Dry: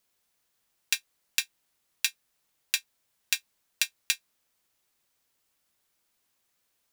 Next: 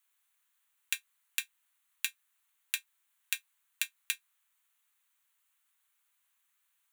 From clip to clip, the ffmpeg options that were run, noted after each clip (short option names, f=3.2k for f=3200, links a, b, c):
-af "highpass=f=1k:w=0.5412,highpass=f=1k:w=1.3066,equalizer=f=5.1k:w=3:g=-14.5,acompressor=threshold=-28dB:ratio=6"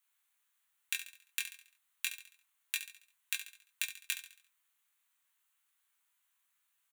-filter_complex "[0:a]flanger=delay=19.5:depth=4:speed=0.32,asplit=2[a][b];[b]aecho=0:1:69|138|207|276|345:0.282|0.124|0.0546|0.024|0.0106[c];[a][c]amix=inputs=2:normalize=0,acrusher=bits=8:mode=log:mix=0:aa=0.000001,volume=1dB"